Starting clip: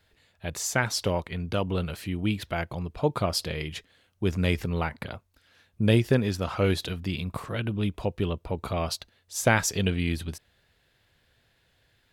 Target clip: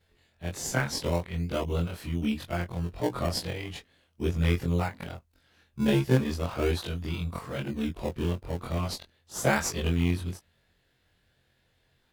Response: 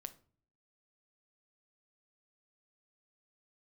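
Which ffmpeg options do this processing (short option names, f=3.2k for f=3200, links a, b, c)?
-filter_complex "[0:a]afftfilt=real='re':imag='-im':win_size=2048:overlap=0.75,asplit=2[a][b];[b]acrusher=samples=24:mix=1:aa=0.000001:lfo=1:lforange=24:lforate=0.38,volume=-8dB[c];[a][c]amix=inputs=2:normalize=0"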